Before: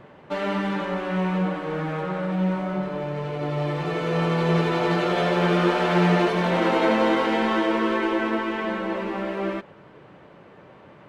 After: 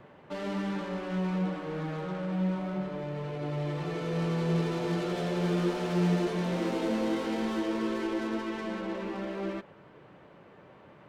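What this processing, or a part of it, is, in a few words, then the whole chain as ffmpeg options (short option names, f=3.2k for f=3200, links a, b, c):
one-band saturation: -filter_complex "[0:a]acrossover=split=450|4600[a][b][c];[b]asoftclip=type=tanh:threshold=-33dB[d];[a][d][c]amix=inputs=3:normalize=0,volume=-5.5dB"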